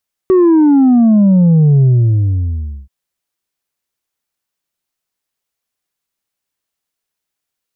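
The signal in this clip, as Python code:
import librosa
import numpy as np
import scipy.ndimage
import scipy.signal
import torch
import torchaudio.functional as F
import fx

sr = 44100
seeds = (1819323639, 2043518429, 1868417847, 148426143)

y = fx.sub_drop(sr, level_db=-6, start_hz=380.0, length_s=2.58, drive_db=3.0, fade_s=1.05, end_hz=65.0)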